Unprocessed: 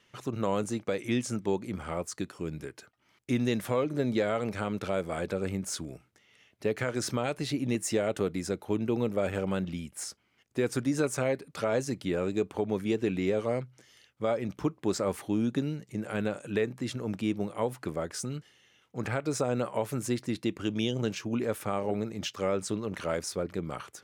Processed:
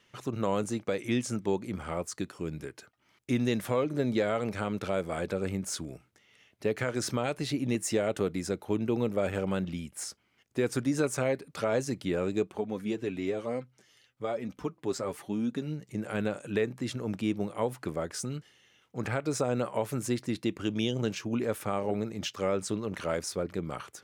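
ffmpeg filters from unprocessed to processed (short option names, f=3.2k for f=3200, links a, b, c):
-filter_complex "[0:a]asplit=3[a][b][c];[a]afade=t=out:st=12.43:d=0.02[d];[b]flanger=delay=3.8:depth=4:regen=32:speed=1.1:shape=sinusoidal,afade=t=in:st=12.43:d=0.02,afade=t=out:st=15.8:d=0.02[e];[c]afade=t=in:st=15.8:d=0.02[f];[d][e][f]amix=inputs=3:normalize=0"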